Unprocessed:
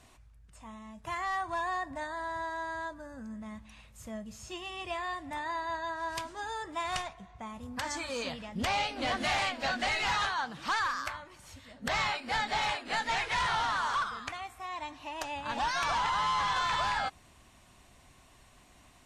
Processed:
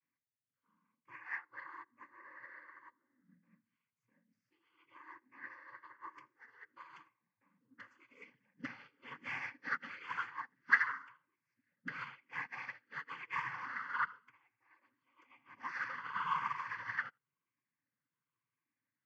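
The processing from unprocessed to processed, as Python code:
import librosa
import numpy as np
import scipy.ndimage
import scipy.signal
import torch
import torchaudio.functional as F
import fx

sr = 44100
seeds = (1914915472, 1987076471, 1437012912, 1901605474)

y = fx.spec_ripple(x, sr, per_octave=0.71, drift_hz=-0.97, depth_db=8)
y = fx.hum_notches(y, sr, base_hz=60, count=4)
y = fx.noise_vocoder(y, sr, seeds[0], bands=16)
y = fx.cabinet(y, sr, low_hz=160.0, low_slope=12, high_hz=4000.0, hz=(200.0, 380.0, 810.0, 1300.0, 2700.0), db=(-8, -8, -9, -4, -6))
y = fx.fixed_phaser(y, sr, hz=1600.0, stages=4)
y = y + 10.0 ** (-17.5 / 20.0) * np.pad(y, (int(82 * sr / 1000.0), 0))[:len(y)]
y = fx.upward_expand(y, sr, threshold_db=-49.0, expansion=2.5)
y = y * librosa.db_to_amplitude(6.5)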